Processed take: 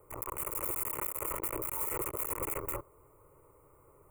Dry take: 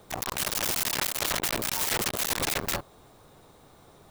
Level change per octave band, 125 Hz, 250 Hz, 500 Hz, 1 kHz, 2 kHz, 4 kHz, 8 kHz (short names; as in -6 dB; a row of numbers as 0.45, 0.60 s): -7.5 dB, -8.0 dB, -4.5 dB, -6.5 dB, -15.0 dB, under -30 dB, -10.0 dB